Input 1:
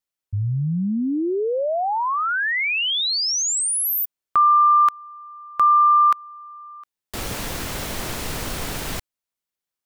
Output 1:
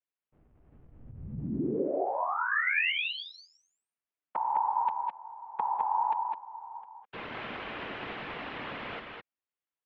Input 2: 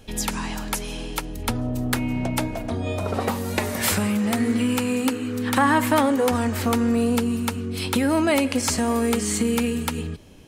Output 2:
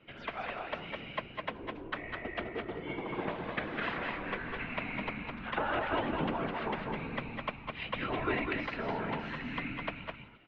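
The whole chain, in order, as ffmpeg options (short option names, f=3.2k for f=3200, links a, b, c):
-filter_complex "[0:a]acrossover=split=720|2300[a][b][c];[a]acompressor=threshold=-35dB:ratio=1.5[d];[b]acompressor=threshold=-28dB:ratio=8[e];[c]acompressor=threshold=-25dB:ratio=5[f];[d][e][f]amix=inputs=3:normalize=0,afftfilt=real='hypot(re,im)*cos(2*PI*random(0))':imag='hypot(re,im)*sin(2*PI*random(1))':win_size=512:overlap=0.75,asplit=2[g][h];[h]aecho=0:1:197|209:0.251|0.596[i];[g][i]amix=inputs=2:normalize=0,highpass=f=450:t=q:w=0.5412,highpass=f=450:t=q:w=1.307,lowpass=f=3.3k:t=q:w=0.5176,lowpass=f=3.3k:t=q:w=0.7071,lowpass=f=3.3k:t=q:w=1.932,afreqshift=-280"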